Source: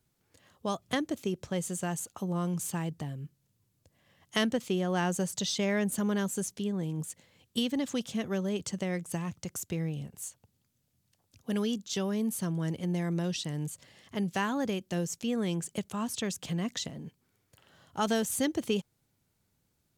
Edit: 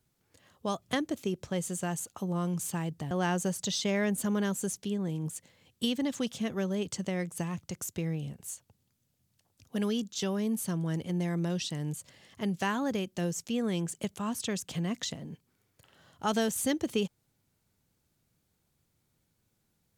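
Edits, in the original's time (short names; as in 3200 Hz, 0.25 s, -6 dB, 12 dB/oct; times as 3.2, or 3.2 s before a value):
3.11–4.85 cut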